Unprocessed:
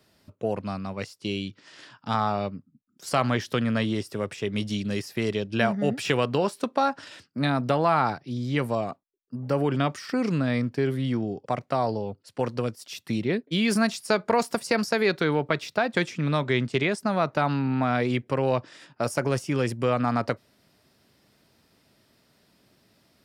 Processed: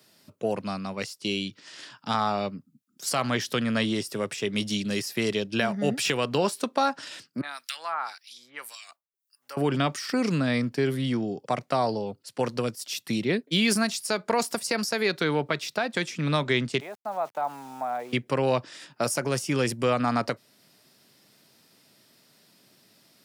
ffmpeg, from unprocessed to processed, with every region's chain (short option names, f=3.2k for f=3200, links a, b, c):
-filter_complex "[0:a]asettb=1/sr,asplit=3[a][b][c];[a]atrim=end=7.414[d];[b]atrim=start=7.41:end=9.57,asetpts=PTS-STARTPTS,afade=t=in:d=0.004:c=qsin,afade=t=out:st=2.156:d=0.004:c=qsin,highpass=1.4k,highshelf=f=9.2k:g=11,acrossover=split=1600[e][f];[e]aeval=exprs='val(0)*(1-1/2+1/2*cos(2*PI*1.8*n/s))':c=same[g];[f]aeval=exprs='val(0)*(1-1/2-1/2*cos(2*PI*1.8*n/s))':c=same[h];[g][h]amix=inputs=2:normalize=0[i];[c]atrim=start=9.566[j];[d][i]acrossfade=d=0.004:c1=hsin:c2=qsin[k];[k][j]acrossfade=d=0.004:c1=qsin:c2=hsin,asettb=1/sr,asplit=3[l][m][n];[l]atrim=end=16.804[o];[m]atrim=start=16.8:end=18.13,asetpts=PTS-STARTPTS,afade=t=in:d=0.004:c=qsin,afade=t=out:st=1.326:d=0.004:c=qsin,bandpass=f=780:t=q:w=3.4,aeval=exprs='val(0)*gte(abs(val(0)),0.00266)':c=same[p];[n]atrim=start=18.126[q];[o][p]acrossfade=d=0.004:c1=hsin:c2=qsin[r];[r][q]acrossfade=d=0.004:c1=qsin:c2=hsin,highpass=f=120:w=0.5412,highpass=f=120:w=1.3066,highshelf=f=3.1k:g=9,alimiter=limit=-12dB:level=0:latency=1:release=328"